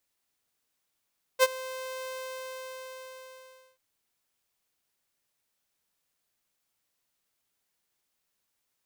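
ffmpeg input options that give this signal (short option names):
-f lavfi -i "aevalsrc='0.224*(2*mod(519*t,1)-1)':d=2.39:s=44100,afade=t=in:d=0.042,afade=t=out:st=0.042:d=0.034:silence=0.1,afade=t=out:st=0.69:d=1.7"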